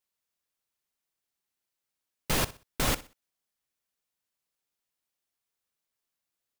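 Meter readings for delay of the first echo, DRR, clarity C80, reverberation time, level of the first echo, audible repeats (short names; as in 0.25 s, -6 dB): 62 ms, none, none, none, -17.5 dB, 2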